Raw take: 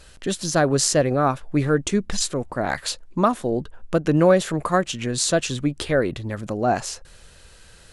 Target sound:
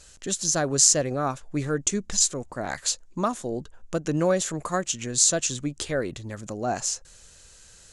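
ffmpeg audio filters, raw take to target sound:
ffmpeg -i in.wav -af "equalizer=frequency=6800:width_type=o:width=0.81:gain=14.5,volume=-7dB" out.wav

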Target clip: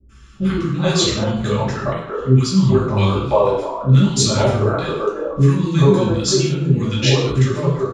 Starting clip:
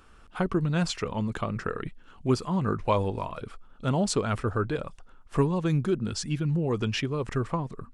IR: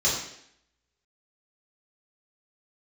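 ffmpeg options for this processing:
-filter_complex "[0:a]adynamicequalizer=threshold=0.00141:dfrequency=3800:dqfactor=5.1:tfrequency=3800:tqfactor=5.1:attack=5:release=100:ratio=0.375:range=3.5:mode=boostabove:tftype=bell,acrossover=split=330|1300[link_01][link_02][link_03];[link_03]adelay=90[link_04];[link_02]adelay=430[link_05];[link_01][link_05][link_04]amix=inputs=3:normalize=0[link_06];[1:a]atrim=start_sample=2205,afade=type=out:start_time=0.28:duration=0.01,atrim=end_sample=12789[link_07];[link_06][link_07]afir=irnorm=-1:irlink=0,volume=-1dB"

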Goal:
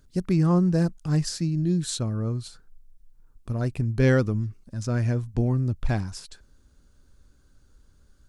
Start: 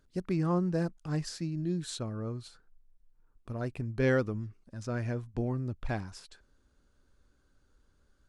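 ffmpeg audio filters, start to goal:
ffmpeg -i in.wav -af "bass=frequency=250:gain=7,treble=frequency=4000:gain=7,volume=4dB" out.wav

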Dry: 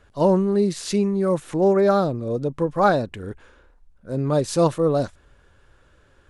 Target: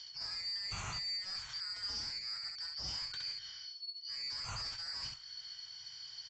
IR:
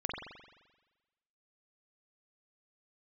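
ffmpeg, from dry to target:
-filter_complex "[0:a]afftfilt=real='real(if(lt(b,272),68*(eq(floor(b/68),0)*3+eq(floor(b/68),1)*2+eq(floor(b/68),2)*1+eq(floor(b/68),3)*0)+mod(b,68),b),0)':imag='imag(if(lt(b,272),68*(eq(floor(b/68),0)*3+eq(floor(b/68),1)*2+eq(floor(b/68),2)*1+eq(floor(b/68),3)*0)+mod(b,68),b),0)':win_size=2048:overlap=0.75,equalizer=frequency=125:width_type=o:width=1:gain=8,equalizer=frequency=250:width_type=o:width=1:gain=-11,equalizer=frequency=500:width_type=o:width=1:gain=-6,equalizer=frequency=1000:width_type=o:width=1:gain=6,areverse,acompressor=threshold=-27dB:ratio=12,areverse,adynamicequalizer=threshold=0.00178:dfrequency=1500:dqfactor=1.5:tfrequency=1500:tqfactor=1.5:attack=5:release=100:ratio=0.375:range=3:mode=boostabove:tftype=bell,aresample=16000,asoftclip=type=tanh:threshold=-35.5dB,aresample=44100,acrossover=split=140[link_01][link_02];[link_02]acompressor=threshold=-60dB:ratio=2.5[link_03];[link_01][link_03]amix=inputs=2:normalize=0,aecho=1:1:20|66:0.422|0.631,volume=9.5dB"

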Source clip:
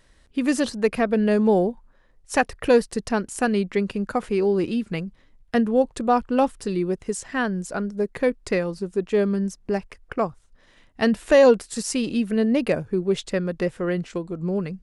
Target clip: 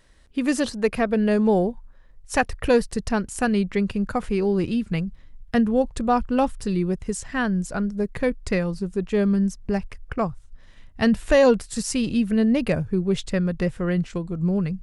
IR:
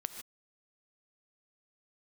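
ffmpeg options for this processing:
-af "asubboost=boost=4:cutoff=160"

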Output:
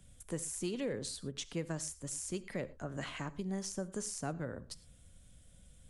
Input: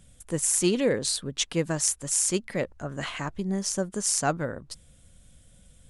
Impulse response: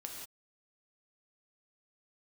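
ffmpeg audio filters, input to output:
-filter_complex "[0:a]acrossover=split=100|440[link_01][link_02][link_03];[link_01]acompressor=threshold=-50dB:ratio=4[link_04];[link_02]acompressor=threshold=-33dB:ratio=4[link_05];[link_03]acompressor=threshold=-36dB:ratio=4[link_06];[link_04][link_05][link_06]amix=inputs=3:normalize=0,asplit=2[link_07][link_08];[1:a]atrim=start_sample=2205,asetrate=70560,aresample=44100,lowshelf=frequency=160:gain=10[link_09];[link_08][link_09]afir=irnorm=-1:irlink=0,volume=-5.5dB[link_10];[link_07][link_10]amix=inputs=2:normalize=0,volume=-7dB"

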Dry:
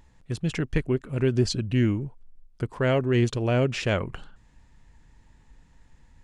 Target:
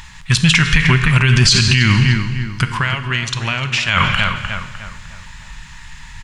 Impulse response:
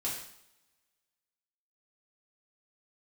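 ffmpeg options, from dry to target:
-filter_complex "[0:a]firequalizer=gain_entry='entry(180,0);entry(290,-15);entry(480,-16);entry(990,8);entry(2600,14);entry(9500,8)':delay=0.05:min_phase=1,asplit=3[link_01][link_02][link_03];[link_01]afade=type=out:start_time=2.64:duration=0.02[link_04];[link_02]acompressor=threshold=-35dB:ratio=6,afade=type=in:start_time=2.64:duration=0.02,afade=type=out:start_time=3.88:duration=0.02[link_05];[link_03]afade=type=in:start_time=3.88:duration=0.02[link_06];[link_04][link_05][link_06]amix=inputs=3:normalize=0,asplit=2[link_07][link_08];[link_08]adelay=303,lowpass=frequency=2000:poles=1,volume=-10dB,asplit=2[link_09][link_10];[link_10]adelay=303,lowpass=frequency=2000:poles=1,volume=0.43,asplit=2[link_11][link_12];[link_12]adelay=303,lowpass=frequency=2000:poles=1,volume=0.43,asplit=2[link_13][link_14];[link_14]adelay=303,lowpass=frequency=2000:poles=1,volume=0.43,asplit=2[link_15][link_16];[link_16]adelay=303,lowpass=frequency=2000:poles=1,volume=0.43[link_17];[link_07][link_09][link_11][link_13][link_15][link_17]amix=inputs=6:normalize=0,asplit=2[link_18][link_19];[1:a]atrim=start_sample=2205,asetrate=22491,aresample=44100[link_20];[link_19][link_20]afir=irnorm=-1:irlink=0,volume=-17.5dB[link_21];[link_18][link_21]amix=inputs=2:normalize=0,alimiter=level_in=17dB:limit=-1dB:release=50:level=0:latency=1,volume=-1dB"

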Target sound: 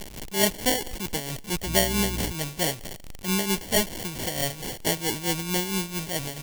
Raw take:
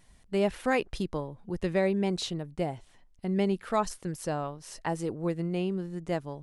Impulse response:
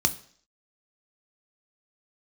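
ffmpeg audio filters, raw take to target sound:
-filter_complex "[0:a]aeval=exprs='val(0)+0.5*0.0251*sgn(val(0))':channel_layout=same,acrusher=samples=35:mix=1:aa=0.000001,aexciter=amount=1.7:drive=9.3:freq=2200,aecho=1:1:141|282|423:0.075|0.0285|0.0108,tremolo=f=4.5:d=0.65,asettb=1/sr,asplit=3[link_01][link_02][link_03];[link_01]atrim=end=1.664[link_04];[link_02]atrim=start=1.66:end=2.32,asetpts=PTS-STARTPTS,afade=type=in:duration=0.004:curve=qsin,afade=type=out:start_time=0.656:duration=0.004:curve=qsin,aeval=exprs='val(0)+0.0251*(sin(2*PI*60*n/s)+sin(2*PI*2*60*n/s)/2+sin(2*PI*3*60*n/s)/3+sin(2*PI*4*60*n/s)/4+sin(2*PI*5*60*n/s)/5)':channel_layout=same[link_05];[link_03]atrim=start=2.316[link_06];[link_04][link_05]acrossfade=duration=0.004:curve1=hsin:curve2=qsin[link_07];[link_07][link_06]acrossfade=duration=0.004:curve1=qsin:curve2=hsin,volume=1.5dB"

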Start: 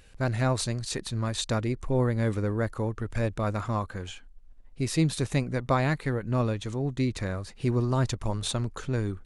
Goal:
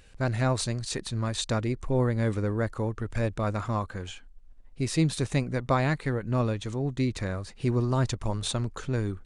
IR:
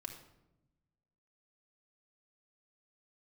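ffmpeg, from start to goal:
-af "aresample=22050,aresample=44100"

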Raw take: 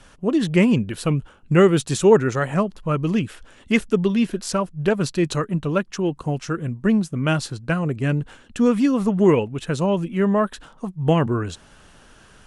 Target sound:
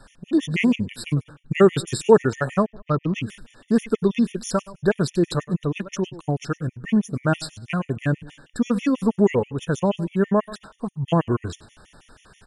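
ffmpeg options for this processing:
ffmpeg -i in.wav -filter_complex "[0:a]aecho=1:1:100|200|300:0.112|0.0393|0.0137,asettb=1/sr,asplit=3[link_01][link_02][link_03];[link_01]atrim=end=2.664[link_04];[link_02]atrim=start=2.66:end=3.15,asetpts=PTS-STARTPTS,afade=type=in:duration=0.004:curve=qsin,afade=type=out:start_time=0.486:duration=0.004:curve=qsin,adynamicsmooth=sensitivity=1:basefreq=1800[link_05];[link_03]atrim=start=3.146[link_06];[link_04][link_05]acrossfade=duration=0.004:curve1=hsin:curve2=qsin[link_07];[link_07][link_06]acrossfade=duration=0.004:curve1=qsin:curve2=hsin,afftfilt=real='re*gt(sin(2*PI*6.2*pts/sr)*(1-2*mod(floor(b*sr/1024/1800),2)),0)':imag='im*gt(sin(2*PI*6.2*pts/sr)*(1-2*mod(floor(b*sr/1024/1800),2)),0)':win_size=1024:overlap=0.75,volume=1dB" out.wav

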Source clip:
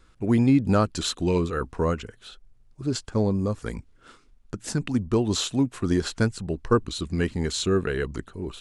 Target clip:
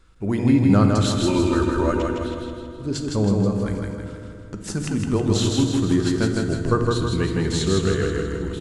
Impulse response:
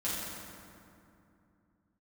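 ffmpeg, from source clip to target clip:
-filter_complex "[0:a]asettb=1/sr,asplit=3[link_01][link_02][link_03];[link_01]atrim=end=1.214[link_04];[link_02]atrim=start=1.21:end=1.96,asetpts=PTS-STARTPTS,afade=type=in:duration=0.004:curve=qsin,afade=type=out:start_time=0.746:duration=0.004:curve=qsin,aecho=1:1:3.3:0.96,atrim=end_sample=33075[link_05];[link_03]atrim=start=1.956[link_06];[link_04][link_05]acrossfade=duration=0.004:curve1=hsin:curve2=qsin[link_07];[link_07][link_06]acrossfade=duration=0.004:curve1=qsin:curve2=hsin,aecho=1:1:160|320|480|640|800|960|1120:0.708|0.361|0.184|0.0939|0.0479|0.0244|0.0125,asplit=2[link_08][link_09];[1:a]atrim=start_sample=2205,lowshelf=frequency=140:gain=7.5[link_10];[link_09][link_10]afir=irnorm=-1:irlink=0,volume=-10dB[link_11];[link_08][link_11]amix=inputs=2:normalize=0,volume=-2dB"

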